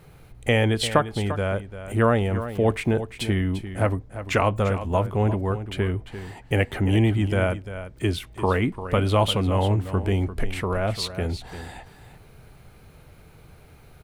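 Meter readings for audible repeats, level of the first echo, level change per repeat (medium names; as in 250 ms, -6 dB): 1, -12.0 dB, no regular repeats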